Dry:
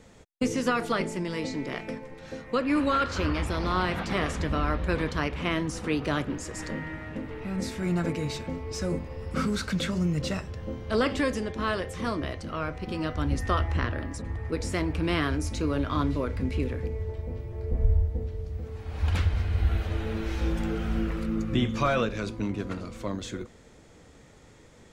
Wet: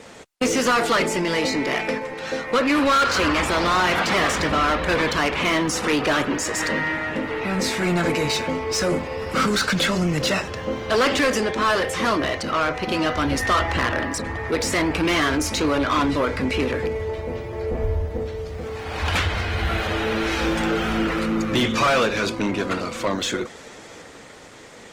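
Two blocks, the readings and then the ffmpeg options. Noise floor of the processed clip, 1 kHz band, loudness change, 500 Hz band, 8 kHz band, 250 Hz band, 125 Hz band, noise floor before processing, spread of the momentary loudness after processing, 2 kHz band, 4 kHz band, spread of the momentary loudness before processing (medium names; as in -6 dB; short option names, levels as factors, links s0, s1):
-42 dBFS, +10.5 dB, +7.5 dB, +9.0 dB, +13.5 dB, +5.5 dB, +0.5 dB, -53 dBFS, 9 LU, +12.0 dB, +12.5 dB, 9 LU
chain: -filter_complex "[0:a]asplit=2[s0][s1];[s1]highpass=f=720:p=1,volume=15.8,asoftclip=type=tanh:threshold=0.282[s2];[s0][s2]amix=inputs=2:normalize=0,lowpass=f=6600:p=1,volume=0.501" -ar 48000 -c:a libopus -b:a 20k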